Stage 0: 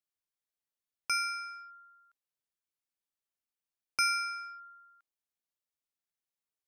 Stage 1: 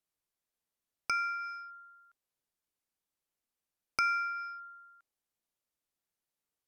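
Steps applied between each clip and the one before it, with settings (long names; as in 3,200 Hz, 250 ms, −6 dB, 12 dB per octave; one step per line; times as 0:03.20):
RIAA equalisation recording
treble cut that deepens with the level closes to 2,000 Hz, closed at −27.5 dBFS
spectral tilt −4.5 dB per octave
level +4 dB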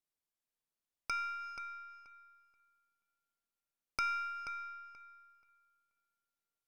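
gain on one half-wave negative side −3 dB
on a send: feedback echo with a low-pass in the loop 481 ms, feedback 19%, low-pass 4,800 Hz, level −9 dB
on the sum: level −4 dB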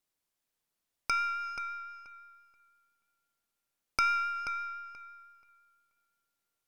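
pitch vibrato 5.9 Hz 13 cents
level +7 dB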